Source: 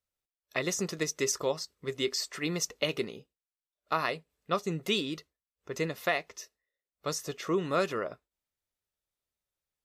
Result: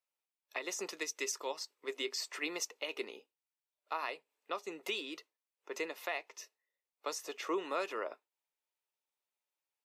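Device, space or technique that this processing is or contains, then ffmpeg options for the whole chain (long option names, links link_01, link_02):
laptop speaker: -filter_complex "[0:a]highpass=270,asettb=1/sr,asplit=3[link_01][link_02][link_03];[link_01]atrim=end=0.904[link_04];[link_02]atrim=start=0.9:end=1.61,asetpts=PTS-STARTPTS,afade=type=in:duration=0.004:curve=qsin,afade=type=out:start_time=0.706:duration=0.004:curve=qsin,equalizer=frequency=630:width_type=o:width=2.5:gain=-5.5[link_05];[link_03]atrim=start=1.606[link_06];[link_04][link_05]acrossfade=duration=0.004:curve1=hsin:curve2=qsin[link_07];[link_07][link_06]acrossfade=duration=0.004:curve1=qsin:curve2=hsin,highpass=frequency=270:width=0.5412,highpass=frequency=270:width=1.3066,equalizer=frequency=900:width_type=o:width=0.39:gain=9,equalizer=frequency=2500:width_type=o:width=0.55:gain=6,alimiter=limit=-20.5dB:level=0:latency=1:release=305,volume=-4.5dB"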